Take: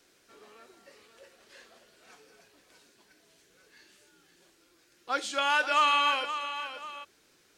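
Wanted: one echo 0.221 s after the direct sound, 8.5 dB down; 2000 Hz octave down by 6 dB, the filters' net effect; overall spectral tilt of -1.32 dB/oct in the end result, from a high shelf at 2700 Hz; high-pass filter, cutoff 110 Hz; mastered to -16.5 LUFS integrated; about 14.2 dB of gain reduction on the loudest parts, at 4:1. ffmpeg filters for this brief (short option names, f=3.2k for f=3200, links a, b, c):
-af "highpass=110,equalizer=f=2k:t=o:g=-5,highshelf=f=2.7k:g=-9,acompressor=threshold=-41dB:ratio=4,aecho=1:1:221:0.376,volume=26.5dB"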